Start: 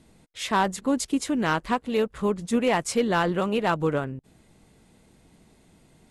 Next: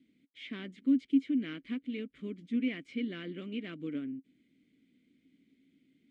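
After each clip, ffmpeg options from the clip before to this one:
-filter_complex "[0:a]acrossover=split=4000[s0][s1];[s1]acompressor=threshold=0.00447:ratio=4:attack=1:release=60[s2];[s0][s2]amix=inputs=2:normalize=0,asplit=3[s3][s4][s5];[s3]bandpass=f=270:t=q:w=8,volume=1[s6];[s4]bandpass=f=2290:t=q:w=8,volume=0.501[s7];[s5]bandpass=f=3010:t=q:w=8,volume=0.355[s8];[s6][s7][s8]amix=inputs=3:normalize=0"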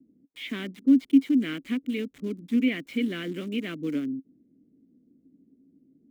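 -filter_complex "[0:a]lowshelf=f=180:g=-3,acrossover=split=230|760[s0][s1][s2];[s2]aeval=exprs='val(0)*gte(abs(val(0)),0.00141)':c=same[s3];[s0][s1][s3]amix=inputs=3:normalize=0,volume=2.82"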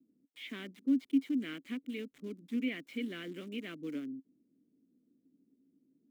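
-af "highpass=f=210:p=1,volume=0.376"

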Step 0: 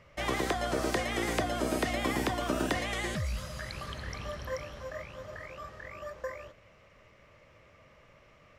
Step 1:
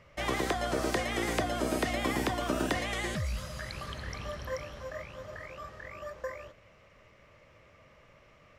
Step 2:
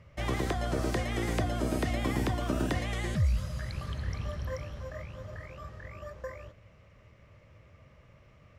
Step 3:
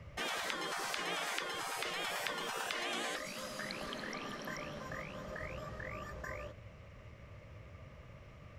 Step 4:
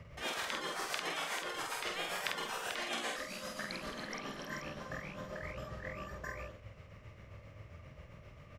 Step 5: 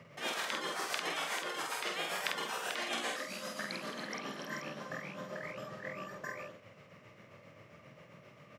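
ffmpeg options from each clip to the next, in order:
-af anull
-af "equalizer=f=87:w=0.5:g=13,volume=0.631"
-filter_complex "[0:a]afftfilt=real='re*lt(hypot(re,im),0.0447)':imag='im*lt(hypot(re,im),0.0447)':win_size=1024:overlap=0.75,acrossover=split=130|5000[s0][s1][s2];[s2]alimiter=level_in=8.41:limit=0.0631:level=0:latency=1:release=301,volume=0.119[s3];[s0][s1][s3]amix=inputs=3:normalize=0,volume=1.5"
-filter_complex "[0:a]tremolo=f=7.5:d=0.7,asplit=2[s0][s1];[s1]adelay=48,volume=0.708[s2];[s0][s2]amix=inputs=2:normalize=0,volume=1.19"
-af "highpass=f=150:w=0.5412,highpass=f=150:w=1.3066,volume=1.19"

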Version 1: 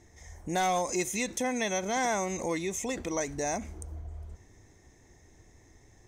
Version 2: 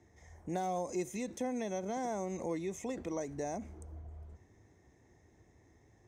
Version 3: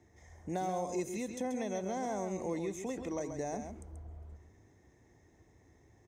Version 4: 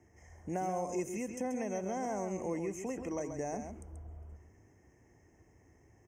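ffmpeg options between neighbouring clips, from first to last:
-filter_complex "[0:a]highpass=71,highshelf=f=2900:g=-11,acrossover=split=130|780|4900[s0][s1][s2][s3];[s2]acompressor=threshold=0.00501:ratio=6[s4];[s0][s1][s4][s3]amix=inputs=4:normalize=0,volume=0.631"
-af "aecho=1:1:134:0.422"
-af "asuperstop=centerf=4000:order=20:qfactor=2.2"

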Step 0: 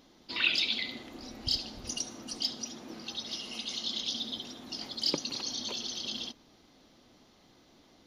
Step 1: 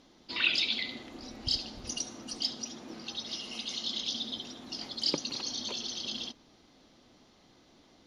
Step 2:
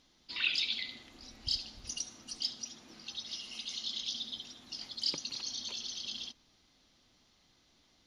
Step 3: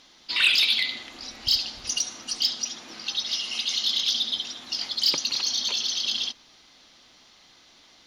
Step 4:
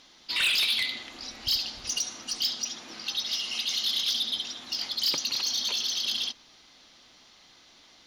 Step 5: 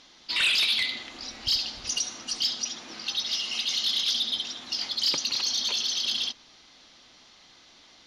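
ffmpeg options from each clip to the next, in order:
-af "lowpass=10000"
-af "equalizer=f=400:w=0.34:g=-11.5,volume=0.794"
-filter_complex "[0:a]asplit=2[s0][s1];[s1]highpass=f=720:p=1,volume=4.47,asoftclip=type=tanh:threshold=0.133[s2];[s0][s2]amix=inputs=2:normalize=0,lowpass=f=5900:p=1,volume=0.501,volume=2.37"
-af "asoftclip=type=tanh:threshold=0.106,volume=0.891"
-af "lowpass=9100,volume=1.19"

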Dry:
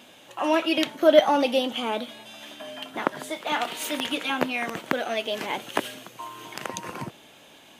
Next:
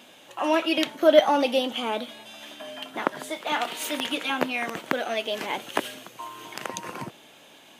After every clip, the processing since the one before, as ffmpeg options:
-af "lowshelf=f=85:g=-11"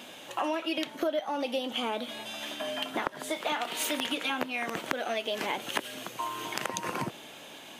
-af "acompressor=threshold=0.0251:ratio=10,volume=1.68"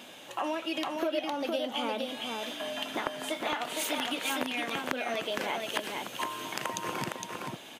-af "aecho=1:1:461:0.668,volume=0.794"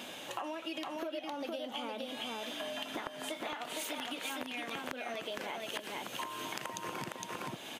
-af "acompressor=threshold=0.01:ratio=6,volume=1.41"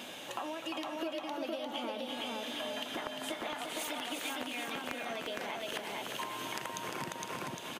-af "aecho=1:1:350|700|1050|1400|1750:0.531|0.223|0.0936|0.0393|0.0165"

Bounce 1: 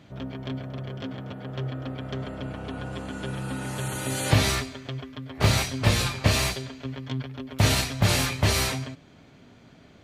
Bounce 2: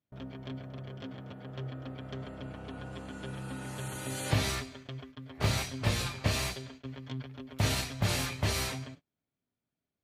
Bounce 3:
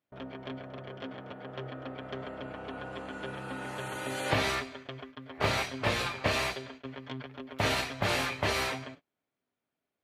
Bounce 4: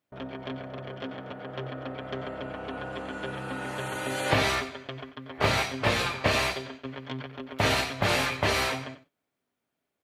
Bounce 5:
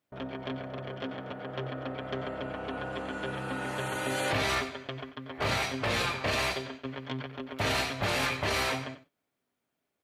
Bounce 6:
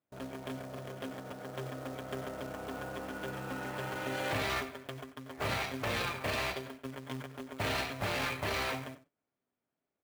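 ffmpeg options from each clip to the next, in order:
-af "agate=range=0.0316:threshold=0.00891:ratio=16:detection=peak,volume=0.398"
-af "bass=f=250:g=-13,treble=f=4000:g=-12,volume=2.11"
-af "aecho=1:1:90:0.188,volume=1.58"
-af "alimiter=limit=0.1:level=0:latency=1:release=13"
-af "adynamicsmooth=sensitivity=5.5:basefreq=2600,acrusher=bits=3:mode=log:mix=0:aa=0.000001,volume=0.596"

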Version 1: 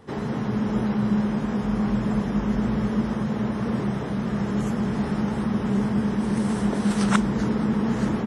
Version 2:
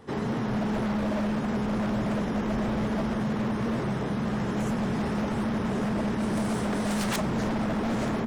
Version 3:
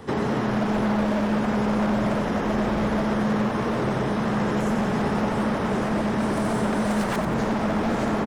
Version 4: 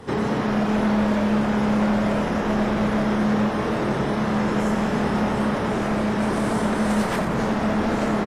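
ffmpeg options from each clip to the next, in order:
-af "bandreject=f=50:t=h:w=6,bandreject=f=100:t=h:w=6,bandreject=f=150:t=h:w=6,bandreject=f=200:t=h:w=6,aeval=exprs='0.075*(abs(mod(val(0)/0.075+3,4)-2)-1)':c=same"
-filter_complex "[0:a]acrossover=split=350|1900[s0][s1][s2];[s0]acompressor=threshold=0.0141:ratio=4[s3];[s1]acompressor=threshold=0.0178:ratio=4[s4];[s2]acompressor=threshold=0.00282:ratio=4[s5];[s3][s4][s5]amix=inputs=3:normalize=0,aecho=1:1:90|180|270|360|450|540|630:0.422|0.228|0.123|0.0664|0.0359|0.0194|0.0105,volume=2.82"
-filter_complex "[0:a]asplit=2[s0][s1];[s1]adelay=28,volume=0.531[s2];[s0][s2]amix=inputs=2:normalize=0" -ar 32000 -c:a aac -b:a 48k

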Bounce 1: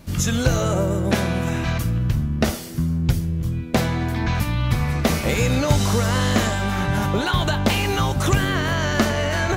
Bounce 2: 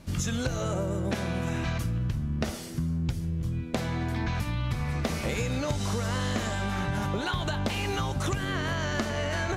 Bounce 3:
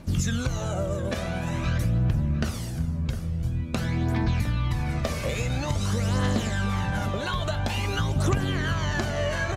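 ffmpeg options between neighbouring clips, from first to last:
-af "lowpass=11000,acompressor=threshold=0.0891:ratio=6,volume=0.596"
-filter_complex "[0:a]aphaser=in_gain=1:out_gain=1:delay=1.9:decay=0.5:speed=0.48:type=triangular,asplit=2[s0][s1];[s1]adelay=708,lowpass=f=1600:p=1,volume=0.299,asplit=2[s2][s3];[s3]adelay=708,lowpass=f=1600:p=1,volume=0.52,asplit=2[s4][s5];[s5]adelay=708,lowpass=f=1600:p=1,volume=0.52,asplit=2[s6][s7];[s7]adelay=708,lowpass=f=1600:p=1,volume=0.52,asplit=2[s8][s9];[s9]adelay=708,lowpass=f=1600:p=1,volume=0.52,asplit=2[s10][s11];[s11]adelay=708,lowpass=f=1600:p=1,volume=0.52[s12];[s0][s2][s4][s6][s8][s10][s12]amix=inputs=7:normalize=0"

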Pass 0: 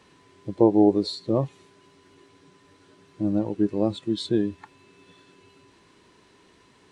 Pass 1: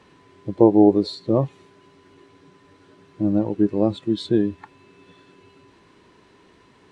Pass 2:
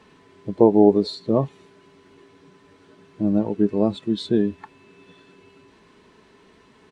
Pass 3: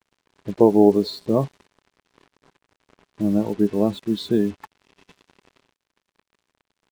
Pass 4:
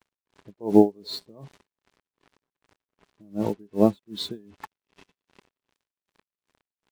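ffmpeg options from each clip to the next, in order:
-af "highshelf=f=4200:g=-9.5,volume=1.58"
-af "aecho=1:1:4.6:0.35"
-af "acrusher=bits=6:mix=0:aa=0.5"
-af "aeval=exprs='val(0)*pow(10,-35*(0.5-0.5*cos(2*PI*2.6*n/s))/20)':c=same,volume=1.41"

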